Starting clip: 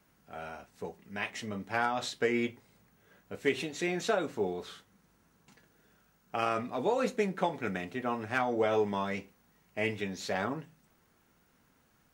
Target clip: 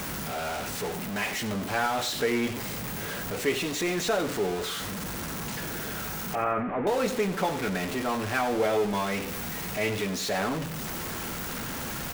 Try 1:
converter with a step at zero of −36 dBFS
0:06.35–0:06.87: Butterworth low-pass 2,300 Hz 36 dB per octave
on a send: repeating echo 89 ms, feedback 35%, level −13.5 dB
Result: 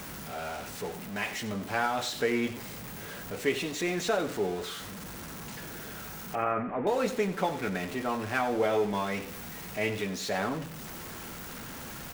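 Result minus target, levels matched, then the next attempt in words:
converter with a step at zero: distortion −6 dB
converter with a step at zero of −28.5 dBFS
0:06.35–0:06.87: Butterworth low-pass 2,300 Hz 36 dB per octave
on a send: repeating echo 89 ms, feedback 35%, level −13.5 dB

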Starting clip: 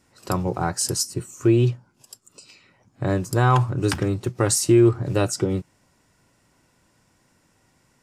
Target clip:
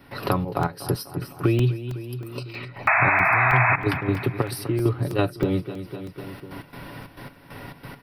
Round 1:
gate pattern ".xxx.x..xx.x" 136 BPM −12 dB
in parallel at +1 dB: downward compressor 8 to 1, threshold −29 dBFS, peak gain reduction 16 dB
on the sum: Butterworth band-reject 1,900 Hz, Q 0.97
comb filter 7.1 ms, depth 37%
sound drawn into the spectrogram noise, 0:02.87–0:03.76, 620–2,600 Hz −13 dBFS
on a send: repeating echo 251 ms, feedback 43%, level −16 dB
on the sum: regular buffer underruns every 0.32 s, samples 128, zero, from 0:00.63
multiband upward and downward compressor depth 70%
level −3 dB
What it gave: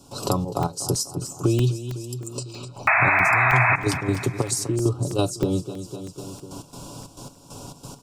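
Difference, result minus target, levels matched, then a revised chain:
8,000 Hz band +13.0 dB
gate pattern ".xxx.x..xx.x" 136 BPM −12 dB
in parallel at +1 dB: downward compressor 8 to 1, threshold −29 dBFS, peak gain reduction 16 dB
on the sum: Butterworth band-reject 7,100 Hz, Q 0.97
comb filter 7.1 ms, depth 37%
sound drawn into the spectrogram noise, 0:02.87–0:03.76, 620–2,600 Hz −13 dBFS
on a send: repeating echo 251 ms, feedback 43%, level −16 dB
on the sum: regular buffer underruns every 0.32 s, samples 128, zero, from 0:00.63
multiband upward and downward compressor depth 70%
level −3 dB

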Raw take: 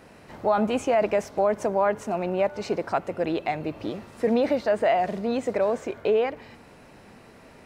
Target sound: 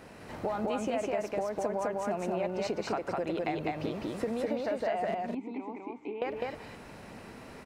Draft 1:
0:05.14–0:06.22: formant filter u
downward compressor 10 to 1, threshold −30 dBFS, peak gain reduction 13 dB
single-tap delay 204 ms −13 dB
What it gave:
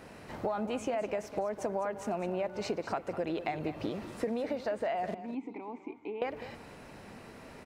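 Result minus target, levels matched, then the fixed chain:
echo-to-direct −11.5 dB
0:05.14–0:06.22: formant filter u
downward compressor 10 to 1, threshold −30 dBFS, peak gain reduction 13 dB
single-tap delay 204 ms −1.5 dB

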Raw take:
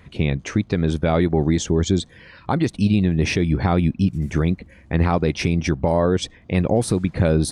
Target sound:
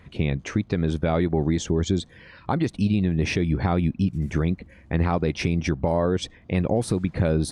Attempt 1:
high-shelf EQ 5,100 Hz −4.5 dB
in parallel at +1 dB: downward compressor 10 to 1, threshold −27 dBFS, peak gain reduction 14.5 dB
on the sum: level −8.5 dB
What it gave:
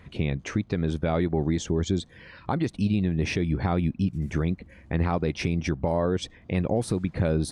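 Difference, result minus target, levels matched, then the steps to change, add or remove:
downward compressor: peak gain reduction +8.5 dB
change: downward compressor 10 to 1, threshold −17.5 dBFS, peak gain reduction 5.5 dB

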